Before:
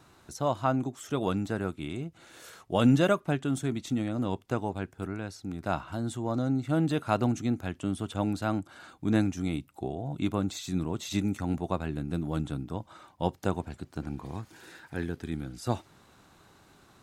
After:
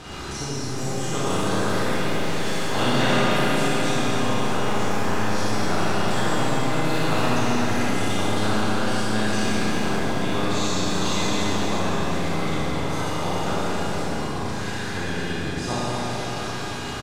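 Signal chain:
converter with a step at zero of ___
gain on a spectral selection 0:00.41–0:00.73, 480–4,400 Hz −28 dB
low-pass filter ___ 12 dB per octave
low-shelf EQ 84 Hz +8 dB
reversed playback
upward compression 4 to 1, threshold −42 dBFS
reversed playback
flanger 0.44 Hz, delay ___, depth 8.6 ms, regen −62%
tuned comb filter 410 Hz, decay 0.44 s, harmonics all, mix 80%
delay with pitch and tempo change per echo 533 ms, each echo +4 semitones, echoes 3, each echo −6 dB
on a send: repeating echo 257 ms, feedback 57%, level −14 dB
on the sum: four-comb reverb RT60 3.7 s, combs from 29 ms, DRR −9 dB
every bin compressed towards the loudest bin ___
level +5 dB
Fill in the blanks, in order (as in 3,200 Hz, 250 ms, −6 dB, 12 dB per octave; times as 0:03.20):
−37.5 dBFS, 6,700 Hz, 3.9 ms, 2 to 1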